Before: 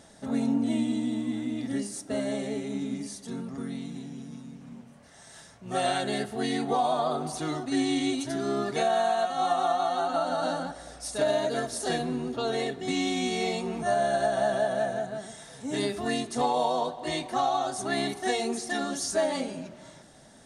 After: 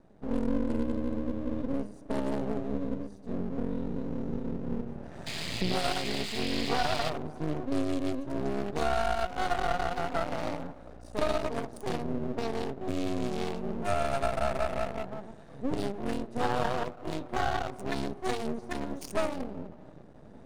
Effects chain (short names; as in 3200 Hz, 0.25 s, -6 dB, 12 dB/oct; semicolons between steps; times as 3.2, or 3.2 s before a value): Wiener smoothing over 41 samples; recorder AGC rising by 9.7 dB/s; 1.3–3.59 HPF 61 Hz 24 dB/oct; 5.26–7.1 painted sound noise 1800–5100 Hz -36 dBFS; half-wave rectifier; gain +2 dB